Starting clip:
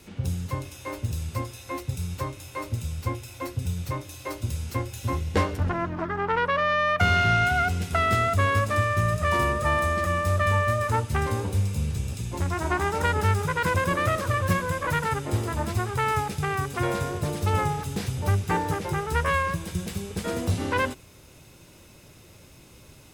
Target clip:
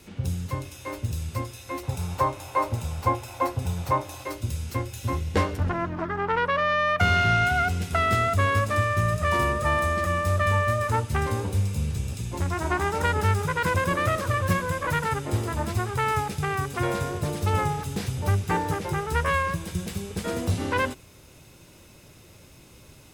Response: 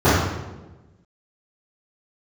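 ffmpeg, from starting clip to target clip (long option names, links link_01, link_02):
-filter_complex "[0:a]asettb=1/sr,asplit=3[link_01][link_02][link_03];[link_01]atrim=end=1.834[link_04];[link_02]atrim=start=1.83:end=4.24,asetpts=PTS-STARTPTS,afade=type=in:duration=0.004:curve=qsin,afade=type=out:start_time=2.406:duration=0.004:curve=qsin,equalizer=frequency=830:width_type=o:width=1.4:gain=15[link_05];[link_03]atrim=start=4.236[link_06];[link_04][link_05]acrossfade=duration=0.004:curve1=hsin:curve2=qsin[link_07];[link_07][link_06]acrossfade=duration=0.004:curve1=qsin:curve2=hsin"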